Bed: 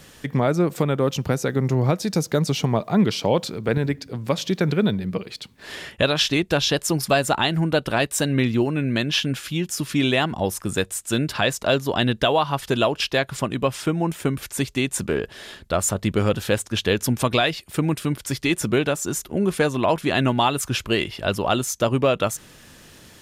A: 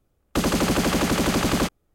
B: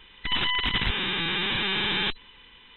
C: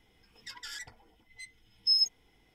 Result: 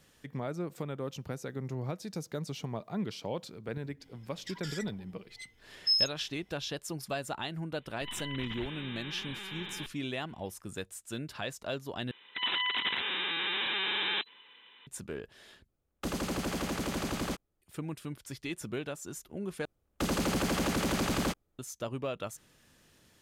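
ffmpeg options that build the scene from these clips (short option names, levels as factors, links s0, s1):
-filter_complex "[2:a]asplit=2[s0][s1];[1:a]asplit=2[s2][s3];[0:a]volume=0.15[s4];[3:a]acontrast=74[s5];[s1]highpass=380[s6];[s3]volume=6.68,asoftclip=hard,volume=0.15[s7];[s4]asplit=4[s8][s9][s10][s11];[s8]atrim=end=12.114[s12];[s6]atrim=end=2.76,asetpts=PTS-STARTPTS,volume=0.562[s13];[s9]atrim=start=14.866:end=15.684[s14];[s2]atrim=end=1.94,asetpts=PTS-STARTPTS,volume=0.237[s15];[s10]atrim=start=17.616:end=19.654[s16];[s7]atrim=end=1.94,asetpts=PTS-STARTPTS,volume=0.398[s17];[s11]atrim=start=21.586[s18];[s5]atrim=end=2.54,asetpts=PTS-STARTPTS,volume=0.398,afade=t=in:d=0.004:c=hsin,afade=t=out:st=2.536:d=0.004:c=hsin,adelay=4000[s19];[s0]atrim=end=2.76,asetpts=PTS-STARTPTS,volume=0.15,afade=t=in:d=0.004:c=hsin,afade=t=out:st=2.756:d=0.004:c=hsin,adelay=7760[s20];[s12][s13]acrossfade=d=0.004:c1=hsin:c2=hsin[s21];[s21][s14]acrossfade=d=0.004:c1=hsin:c2=hsin[s22];[s22][s15]acrossfade=d=0.004:c1=hsin:c2=hsin[s23];[s23][s16]acrossfade=d=0.004:c1=hsin:c2=hsin[s24];[s24][s17]acrossfade=d=0.004:c1=hsin:c2=hsin[s25];[s25][s18]acrossfade=d=0.004:c1=hsin:c2=hsin[s26];[s26][s19][s20]amix=inputs=3:normalize=0"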